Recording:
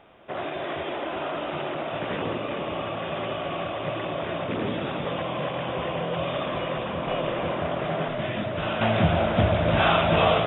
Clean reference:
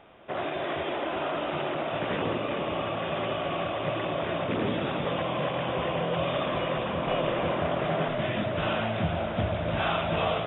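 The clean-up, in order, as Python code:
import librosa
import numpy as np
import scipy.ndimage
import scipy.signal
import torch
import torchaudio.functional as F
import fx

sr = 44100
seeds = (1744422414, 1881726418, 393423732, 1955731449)

y = fx.fix_level(x, sr, at_s=8.81, step_db=-7.0)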